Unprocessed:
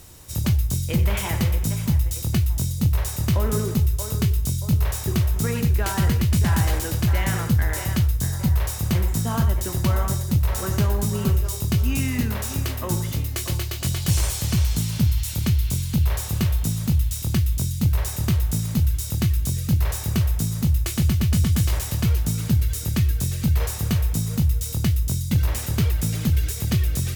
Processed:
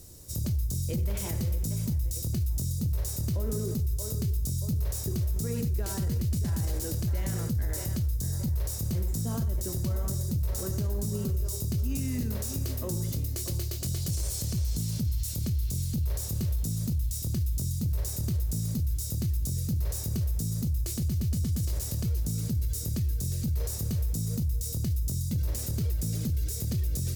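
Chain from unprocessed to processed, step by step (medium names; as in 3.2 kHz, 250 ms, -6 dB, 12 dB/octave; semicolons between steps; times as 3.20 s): high-order bell 1.6 kHz -11 dB 2.5 oct; peak limiter -19.5 dBFS, peak gain reduction 9.5 dB; trim -3 dB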